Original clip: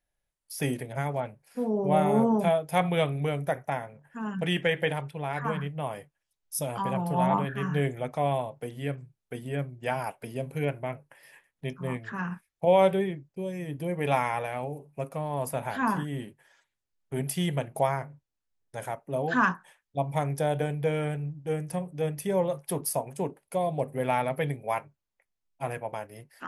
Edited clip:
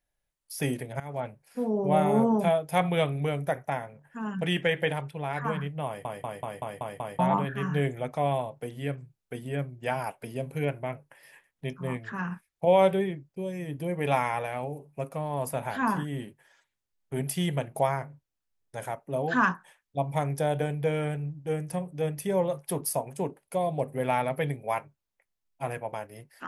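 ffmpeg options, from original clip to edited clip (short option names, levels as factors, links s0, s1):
-filter_complex "[0:a]asplit=9[s0][s1][s2][s3][s4][s5][s6][s7][s8];[s0]atrim=end=1,asetpts=PTS-STARTPTS,afade=t=out:st=0.996:d=0.004:c=hsin:silence=0.112202[s9];[s1]atrim=start=1:end=6.052,asetpts=PTS-STARTPTS,afade=t=in:d=0.25:silence=0.112202[s10];[s2]atrim=start=5.858:end=6.052[s11];[s3]atrim=start=5.858:end=6.052[s12];[s4]atrim=start=5.858:end=6.052[s13];[s5]atrim=start=5.858:end=6.052[s14];[s6]atrim=start=5.858:end=6.052[s15];[s7]atrim=start=5.858:end=6.052[s16];[s8]atrim=start=7.188[s17];[s9][s10]concat=n=2:v=0:a=1[s18];[s18][s11]acrossfade=d=0.004:c1=hsin:c2=hsin[s19];[s19][s12]acrossfade=d=0.004:c1=hsin:c2=hsin[s20];[s20][s13]acrossfade=d=0.004:c1=hsin:c2=hsin[s21];[s21][s14]acrossfade=d=0.004:c1=hsin:c2=hsin[s22];[s22][s15]acrossfade=d=0.004:c1=hsin:c2=hsin[s23];[s23][s16]acrossfade=d=0.004:c1=hsin:c2=hsin[s24];[s24][s17]acrossfade=d=0.004:c1=hsin:c2=hsin"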